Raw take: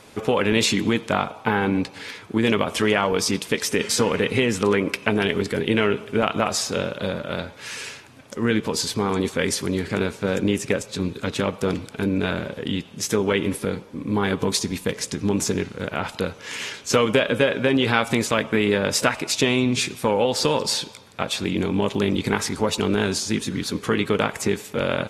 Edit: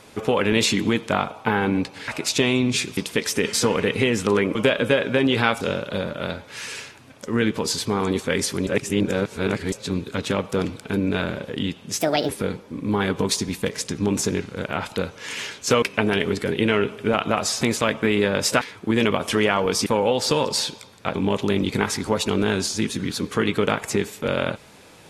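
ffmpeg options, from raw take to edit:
-filter_complex "[0:a]asplit=14[a][b][c][d][e][f][g][h][i][j][k][l][m][n];[a]atrim=end=2.082[o];[b]atrim=start=19.108:end=20.002[p];[c]atrim=start=3.328:end=4.912[q];[d]atrim=start=17.048:end=18.112[r];[e]atrim=start=6.698:end=9.762[s];[f]atrim=start=9.758:end=10.812,asetpts=PTS-STARTPTS,areverse[t];[g]atrim=start=10.808:end=13.104[u];[h]atrim=start=13.1:end=13.52,asetpts=PTS-STARTPTS,asetrate=65709,aresample=44100[v];[i]atrim=start=13.516:end=17.052[w];[j]atrim=start=4.908:end=6.702[x];[k]atrim=start=18.108:end=19.112[y];[l]atrim=start=2.078:end=3.332[z];[m]atrim=start=19.998:end=21.292[aa];[n]atrim=start=21.668[ab];[o][p]acrossfade=d=0.004:c1=hsin:c2=hsin[ac];[ac][q]acrossfade=d=0.004:c1=hsin:c2=hsin[ad];[ad][r]acrossfade=d=0.004:c1=hsin:c2=hsin[ae];[ae][s]acrossfade=d=0.004:c1=hsin:c2=hsin[af];[af][t]acrossfade=d=0.004:c1=hsin:c2=hsin[ag];[ag][u]acrossfade=d=0.004:c1=hsin:c2=hsin[ah];[ah][v]acrossfade=d=0.004:c1=hsin:c2=hsin[ai];[ai][w]acrossfade=d=0.004:c1=hsin:c2=hsin[aj];[aj][x]acrossfade=d=0.004:c1=hsin:c2=hsin[ak];[ak][y]acrossfade=d=0.004:c1=hsin:c2=hsin[al];[al][z]acrossfade=d=0.004:c1=hsin:c2=hsin[am];[am][aa]acrossfade=d=0.004:c1=hsin:c2=hsin[an];[an][ab]acrossfade=d=0.004:c1=hsin:c2=hsin"

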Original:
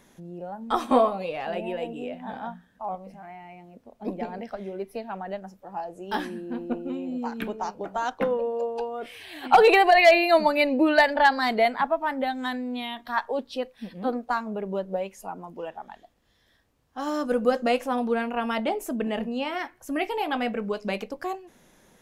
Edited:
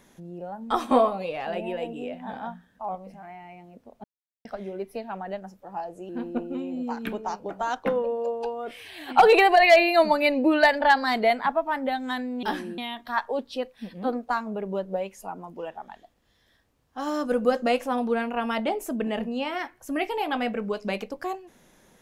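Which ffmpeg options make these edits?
-filter_complex "[0:a]asplit=6[a][b][c][d][e][f];[a]atrim=end=4.04,asetpts=PTS-STARTPTS,afade=t=out:st=4.036:d=0.004:c=hsin[g];[b]atrim=start=4.04:end=4.45,asetpts=PTS-STARTPTS,volume=0[h];[c]atrim=start=4.45:end=6.092,asetpts=PTS-STARTPTS,afade=t=in:d=0.004:c=hsin[i];[d]atrim=start=6.438:end=12.782[j];[e]atrim=start=6.088:end=6.442[k];[f]atrim=start=12.778[l];[g][h][i]concat=n=3:v=0:a=1[m];[m][j]acrossfade=d=0.004:c1=hsin:c2=hsin[n];[n][k]acrossfade=d=0.004:c1=hsin:c2=hsin[o];[o][l]acrossfade=d=0.004:c1=hsin:c2=hsin"

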